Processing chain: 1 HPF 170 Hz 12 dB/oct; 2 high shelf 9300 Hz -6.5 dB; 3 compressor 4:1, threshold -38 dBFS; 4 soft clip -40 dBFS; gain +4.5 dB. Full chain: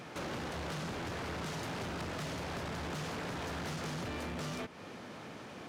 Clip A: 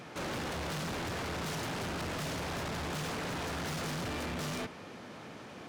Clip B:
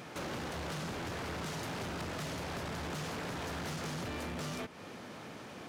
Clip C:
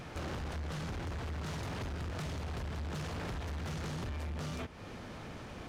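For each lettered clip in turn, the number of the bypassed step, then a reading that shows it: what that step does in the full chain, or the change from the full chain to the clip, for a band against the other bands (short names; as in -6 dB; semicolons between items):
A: 3, mean gain reduction 7.5 dB; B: 2, 8 kHz band +2.0 dB; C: 1, 125 Hz band +7.5 dB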